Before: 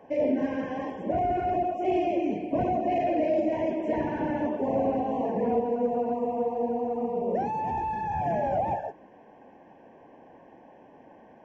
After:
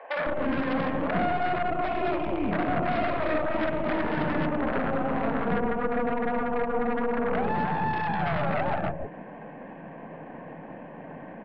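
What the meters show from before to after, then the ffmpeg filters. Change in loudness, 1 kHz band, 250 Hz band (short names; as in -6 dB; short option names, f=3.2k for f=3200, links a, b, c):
0.0 dB, +0.5 dB, +0.5 dB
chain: -filter_complex "[0:a]acompressor=threshold=-33dB:ratio=5,highpass=140,equalizer=f=160:t=q:w=4:g=9,equalizer=f=260:t=q:w=4:g=-3,equalizer=f=370:t=q:w=4:g=-7,equalizer=f=840:t=q:w=4:g=-7,lowpass=f=2.5k:w=0.5412,lowpass=f=2.5k:w=1.3066,aeval=exprs='0.0596*(cos(1*acos(clip(val(0)/0.0596,-1,1)))-cos(1*PI/2))+0.0188*(cos(4*acos(clip(val(0)/0.0596,-1,1)))-cos(4*PI/2))':c=same,aresample=11025,aeval=exprs='0.075*sin(PI/2*2*val(0)/0.075)':c=same,aresample=44100,acrossover=split=540[a][b];[a]adelay=160[c];[c][b]amix=inputs=2:normalize=0,volume=4.5dB"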